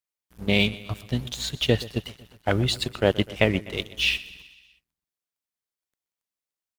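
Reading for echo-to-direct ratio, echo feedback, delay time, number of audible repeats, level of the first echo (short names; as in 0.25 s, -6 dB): -16.5 dB, 59%, 0.125 s, 4, -18.5 dB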